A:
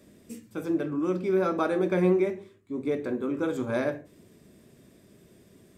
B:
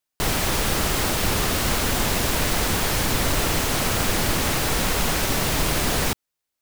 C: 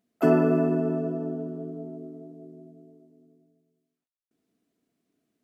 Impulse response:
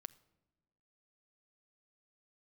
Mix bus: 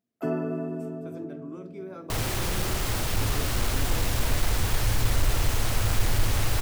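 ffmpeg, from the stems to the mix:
-filter_complex "[0:a]alimiter=limit=-20dB:level=0:latency=1:release=268,adelay=500,volume=-12dB[link_01];[1:a]asoftclip=type=tanh:threshold=-18dB,asubboost=boost=6:cutoff=66,adelay=1900,volume=-5.5dB[link_02];[2:a]volume=-9dB[link_03];[link_01][link_02][link_03]amix=inputs=3:normalize=0,equalizer=frequency=110:width_type=o:width=0.48:gain=11.5"

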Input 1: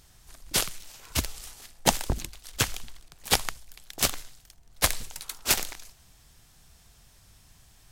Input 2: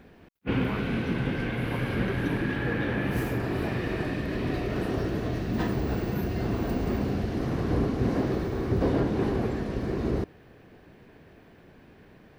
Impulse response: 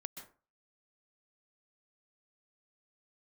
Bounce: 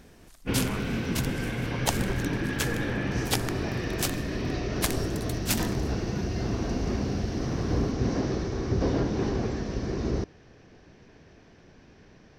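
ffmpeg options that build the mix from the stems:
-filter_complex "[0:a]volume=-5.5dB[link_01];[1:a]lowpass=frequency=5800:width_type=q:width=5.3,lowshelf=frequency=77:gain=5.5,volume=-2dB[link_02];[link_01][link_02]amix=inputs=2:normalize=0"

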